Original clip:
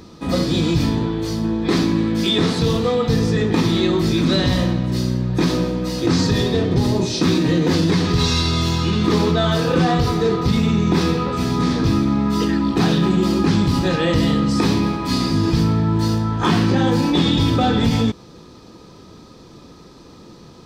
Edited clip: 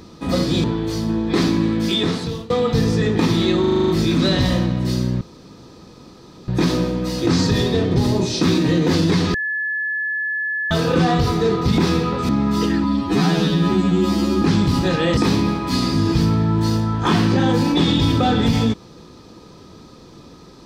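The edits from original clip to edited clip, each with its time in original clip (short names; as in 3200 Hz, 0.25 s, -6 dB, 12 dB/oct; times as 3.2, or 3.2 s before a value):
0.64–0.99 cut
2–2.85 fade out equal-power, to -21 dB
3.95 stutter 0.04 s, 8 plays
5.28 insert room tone 1.27 s
8.14–9.51 bleep 1720 Hz -20 dBFS
10.58–10.92 cut
11.43–12.08 cut
12.63–13.42 stretch 2×
14.17–14.55 cut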